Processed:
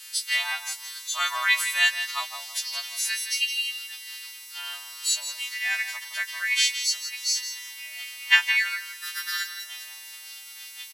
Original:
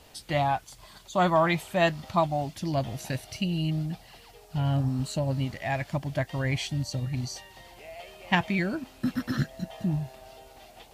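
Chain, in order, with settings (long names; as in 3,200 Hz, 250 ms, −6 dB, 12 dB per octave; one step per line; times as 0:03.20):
every partial snapped to a pitch grid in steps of 2 semitones
high-pass filter 1,500 Hz 24 dB per octave
on a send: repeating echo 165 ms, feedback 26%, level −10 dB
on the sum: level +6.5 dB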